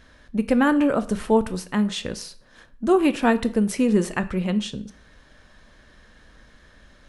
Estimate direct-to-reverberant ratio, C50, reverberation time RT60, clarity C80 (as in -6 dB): 11.0 dB, 17.5 dB, 0.50 s, 20.5 dB